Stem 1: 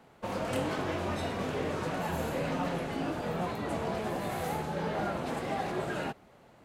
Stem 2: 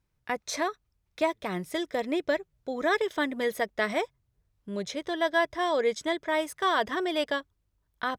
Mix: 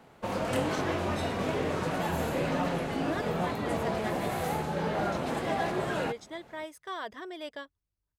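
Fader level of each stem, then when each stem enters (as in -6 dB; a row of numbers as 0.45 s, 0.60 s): +2.5 dB, -12.0 dB; 0.00 s, 0.25 s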